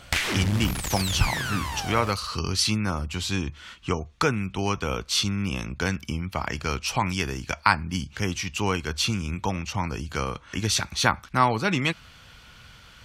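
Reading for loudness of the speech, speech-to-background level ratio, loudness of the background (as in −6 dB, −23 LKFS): −26.5 LKFS, 2.0 dB, −28.5 LKFS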